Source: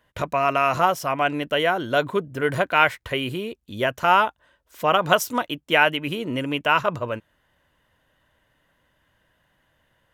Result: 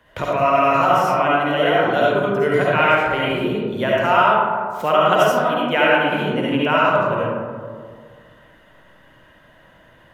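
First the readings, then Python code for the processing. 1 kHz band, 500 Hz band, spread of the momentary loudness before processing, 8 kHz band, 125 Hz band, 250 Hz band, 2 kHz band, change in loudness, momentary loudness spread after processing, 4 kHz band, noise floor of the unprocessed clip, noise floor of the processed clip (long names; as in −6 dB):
+5.0 dB, +7.0 dB, 9 LU, −3.5 dB, +5.5 dB, +6.5 dB, +3.0 dB, +4.5 dB, 8 LU, +1.0 dB, −68 dBFS, −51 dBFS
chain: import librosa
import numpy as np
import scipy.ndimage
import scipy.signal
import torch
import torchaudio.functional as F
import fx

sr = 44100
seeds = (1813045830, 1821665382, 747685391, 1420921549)

y = fx.high_shelf(x, sr, hz=4700.0, db=-7.5)
y = fx.rev_freeverb(y, sr, rt60_s=1.5, hf_ratio=0.35, predelay_ms=30, drr_db=-7.0)
y = fx.band_squash(y, sr, depth_pct=40)
y = y * 10.0 ** (-3.0 / 20.0)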